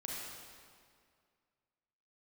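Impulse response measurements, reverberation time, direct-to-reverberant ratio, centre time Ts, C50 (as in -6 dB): 2.1 s, -4.0 dB, 0.125 s, -2.5 dB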